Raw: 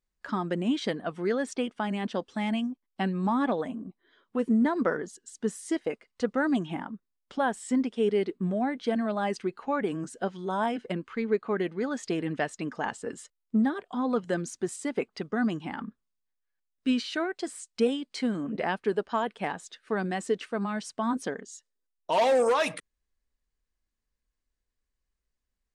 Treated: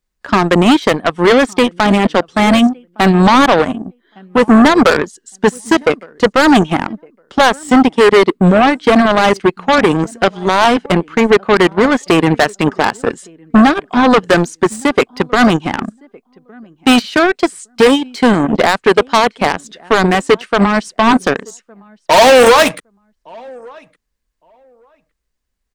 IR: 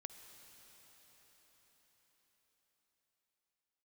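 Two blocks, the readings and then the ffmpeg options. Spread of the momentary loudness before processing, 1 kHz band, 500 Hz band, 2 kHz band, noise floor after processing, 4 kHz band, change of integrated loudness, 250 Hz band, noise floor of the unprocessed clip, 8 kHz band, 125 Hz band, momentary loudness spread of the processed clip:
10 LU, +19.5 dB, +17.5 dB, +21.0 dB, −69 dBFS, +22.0 dB, +18.0 dB, +16.5 dB, −82 dBFS, +16.5 dB, +18.5 dB, 9 LU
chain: -filter_complex "[0:a]asplit=2[link_01][link_02];[link_02]adelay=1161,lowpass=frequency=2200:poles=1,volume=-20dB,asplit=2[link_03][link_04];[link_04]adelay=1161,lowpass=frequency=2200:poles=1,volume=0.19[link_05];[link_01][link_03][link_05]amix=inputs=3:normalize=0,acrossover=split=560|960[link_06][link_07][link_08];[link_08]asoftclip=type=tanh:threshold=-34.5dB[link_09];[link_06][link_07][link_09]amix=inputs=3:normalize=0,aeval=exprs='0.188*(cos(1*acos(clip(val(0)/0.188,-1,1)))-cos(1*PI/2))+0.0237*(cos(7*acos(clip(val(0)/0.188,-1,1)))-cos(7*PI/2))':channel_layout=same,apsyclip=30dB,volume=-2dB"

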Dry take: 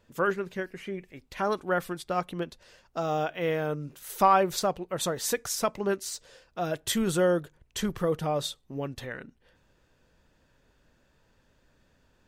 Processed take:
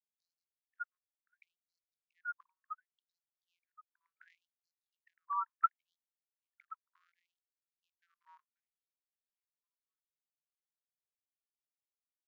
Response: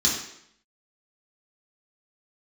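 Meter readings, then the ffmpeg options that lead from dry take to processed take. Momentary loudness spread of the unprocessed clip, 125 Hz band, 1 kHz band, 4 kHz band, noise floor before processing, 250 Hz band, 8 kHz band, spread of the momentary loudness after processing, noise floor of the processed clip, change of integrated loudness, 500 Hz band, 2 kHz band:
14 LU, below −40 dB, −13.0 dB, below −40 dB, −67 dBFS, below −40 dB, below −40 dB, 19 LU, below −85 dBFS, −10.5 dB, below −40 dB, −16.0 dB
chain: -filter_complex "[0:a]afftfilt=real='re*gte(hypot(re,im),0.355)':imag='im*gte(hypot(re,im),0.355)':win_size=1024:overlap=0.75,highpass=frequency=94:poles=1,agate=range=-52dB:threshold=-43dB:ratio=16:detection=peak,asplit=2[link_01][link_02];[link_02]aecho=0:1:536|1072|1608:0.0944|0.0359|0.0136[link_03];[link_01][link_03]amix=inputs=2:normalize=0,aresample=16000,aresample=44100,afftfilt=real='re*gte(b*sr/1024,920*pow(4100/920,0.5+0.5*sin(2*PI*0.69*pts/sr)))':imag='im*gte(b*sr/1024,920*pow(4100/920,0.5+0.5*sin(2*PI*0.69*pts/sr)))':win_size=1024:overlap=0.75,volume=17.5dB"

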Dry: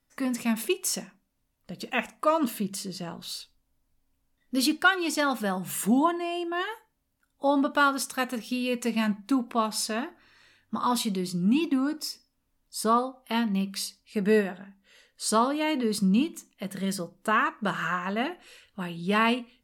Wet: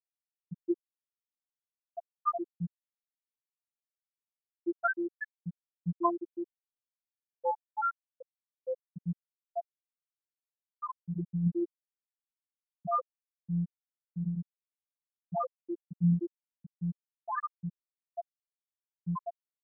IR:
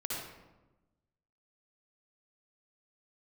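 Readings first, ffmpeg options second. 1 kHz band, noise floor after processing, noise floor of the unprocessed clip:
−8.5 dB, below −85 dBFS, −75 dBFS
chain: -af "afftfilt=real='hypot(re,im)*cos(PI*b)':imag='0':win_size=1024:overlap=0.75,afftfilt=real='re*gte(hypot(re,im),0.355)':imag='im*gte(hypot(re,im),0.355)':win_size=1024:overlap=0.75"

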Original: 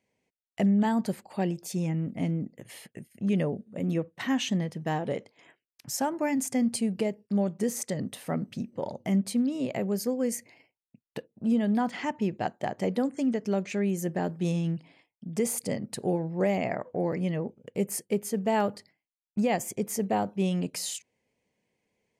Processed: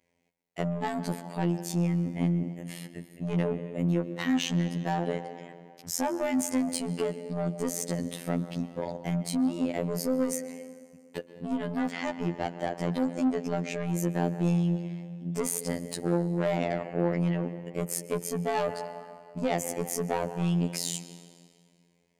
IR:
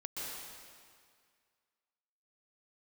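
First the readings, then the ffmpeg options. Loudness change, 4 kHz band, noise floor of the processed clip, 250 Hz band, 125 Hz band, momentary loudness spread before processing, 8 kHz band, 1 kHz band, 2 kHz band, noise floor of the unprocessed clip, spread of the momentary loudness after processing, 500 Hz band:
−1.0 dB, +0.5 dB, −63 dBFS, −1.5 dB, +2.0 dB, 9 LU, +0.5 dB, −1.0 dB, −0.5 dB, below −85 dBFS, 11 LU, −0.5 dB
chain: -filter_complex "[0:a]asplit=2[link_01][link_02];[1:a]atrim=start_sample=2205,highshelf=frequency=4300:gain=-8[link_03];[link_02][link_03]afir=irnorm=-1:irlink=0,volume=-11dB[link_04];[link_01][link_04]amix=inputs=2:normalize=0,asoftclip=type=tanh:threshold=-24dB,afftfilt=real='hypot(re,im)*cos(PI*b)':imag='0':win_size=2048:overlap=0.75,volume=4.5dB"

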